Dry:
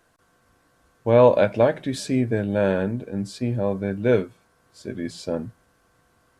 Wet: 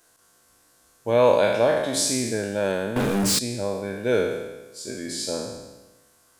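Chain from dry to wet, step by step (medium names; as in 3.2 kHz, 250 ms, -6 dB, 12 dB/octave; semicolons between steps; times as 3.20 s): spectral sustain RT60 1.16 s; tone controls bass -6 dB, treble +14 dB; 2.96–3.39 s: waveshaping leveller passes 5; trim -3.5 dB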